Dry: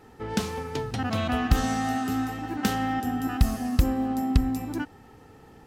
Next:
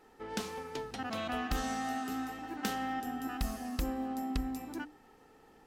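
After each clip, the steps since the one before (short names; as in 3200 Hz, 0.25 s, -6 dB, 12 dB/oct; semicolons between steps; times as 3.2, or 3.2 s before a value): bell 100 Hz -14.5 dB 1.4 oct; notches 60/120/180/240/300 Hz; gain -7 dB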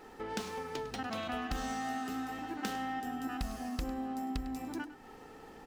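median filter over 3 samples; compressor 2:1, threshold -51 dBFS, peak gain reduction 12.5 dB; echo 0.102 s -14.5 dB; gain +8.5 dB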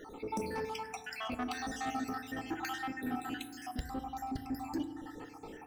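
random spectral dropouts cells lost 65%; soft clip -35 dBFS, distortion -14 dB; FDN reverb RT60 1.5 s, low-frequency decay 1.55×, high-frequency decay 0.3×, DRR 8.5 dB; gain +5.5 dB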